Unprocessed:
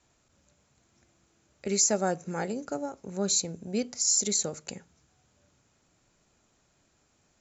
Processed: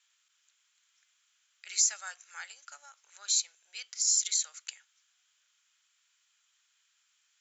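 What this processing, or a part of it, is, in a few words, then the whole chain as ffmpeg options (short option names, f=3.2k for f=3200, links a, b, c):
headphones lying on a table: -af "highpass=f=1.4k:w=0.5412,highpass=f=1.4k:w=1.3066,equalizer=f=3.2k:t=o:w=0.38:g=8,volume=-1.5dB"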